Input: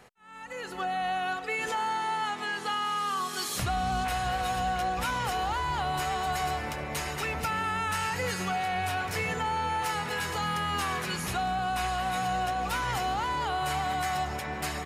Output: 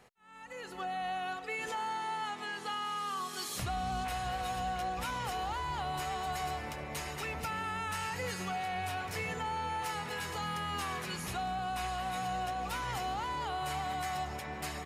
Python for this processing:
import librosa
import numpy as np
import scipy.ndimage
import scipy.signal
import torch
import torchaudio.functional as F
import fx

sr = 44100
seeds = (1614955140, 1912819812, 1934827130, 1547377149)

y = fx.peak_eq(x, sr, hz=1500.0, db=-2.5, octaves=0.34)
y = y * 10.0 ** (-6.0 / 20.0)